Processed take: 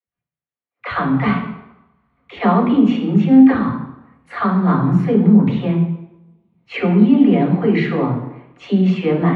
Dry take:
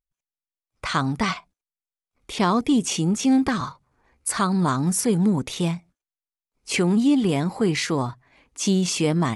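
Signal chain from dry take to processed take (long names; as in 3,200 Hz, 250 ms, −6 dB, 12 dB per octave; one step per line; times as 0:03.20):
high-frequency loss of the air 410 metres
all-pass dispersion lows, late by 70 ms, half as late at 350 Hz
convolution reverb RT60 0.90 s, pre-delay 3 ms, DRR −0.5 dB
level −6.5 dB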